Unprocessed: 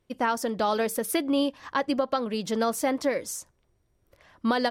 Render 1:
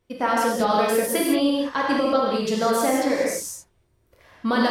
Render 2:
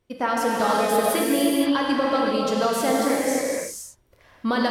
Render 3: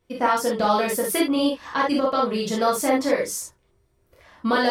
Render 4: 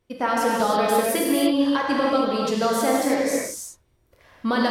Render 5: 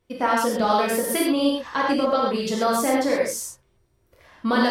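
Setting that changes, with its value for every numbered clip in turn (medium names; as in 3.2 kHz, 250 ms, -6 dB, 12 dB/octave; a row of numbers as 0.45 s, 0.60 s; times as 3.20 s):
gated-style reverb, gate: 230 ms, 540 ms, 90 ms, 350 ms, 150 ms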